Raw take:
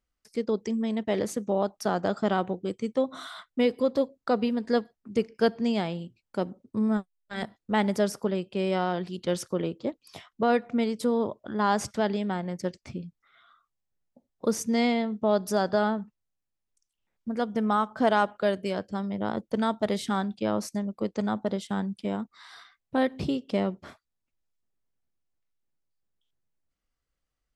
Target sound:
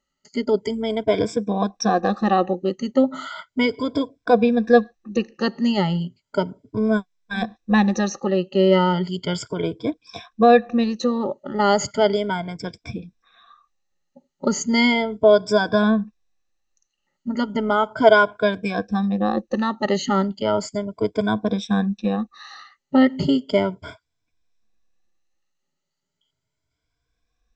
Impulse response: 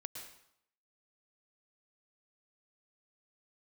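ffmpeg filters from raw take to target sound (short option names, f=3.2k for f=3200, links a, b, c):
-af "afftfilt=real='re*pow(10,23/40*sin(2*PI*(1.7*log(max(b,1)*sr/1024/100)/log(2)-(0.35)*(pts-256)/sr)))':imag='im*pow(10,23/40*sin(2*PI*(1.7*log(max(b,1)*sr/1024/100)/log(2)-(0.35)*(pts-256)/sr)))':win_size=1024:overlap=0.75,volume=3dB" -ar 16000 -c:a sbc -b:a 192k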